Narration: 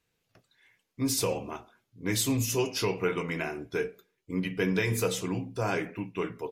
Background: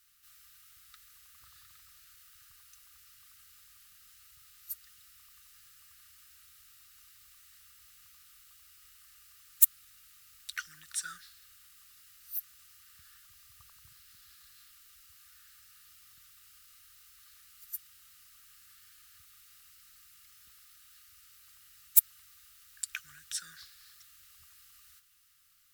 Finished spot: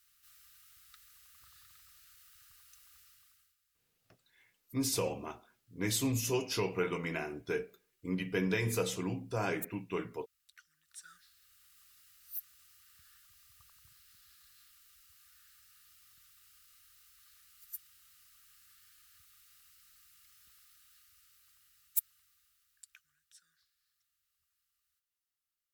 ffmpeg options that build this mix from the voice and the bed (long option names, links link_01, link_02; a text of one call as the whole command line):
ffmpeg -i stem1.wav -i stem2.wav -filter_complex "[0:a]adelay=3750,volume=-4.5dB[link_01];[1:a]volume=14.5dB,afade=type=out:start_time=2.98:duration=0.58:silence=0.112202,afade=type=in:start_time=10.83:duration=0.96:silence=0.141254,afade=type=out:start_time=20.58:duration=2.52:silence=0.1[link_02];[link_01][link_02]amix=inputs=2:normalize=0" out.wav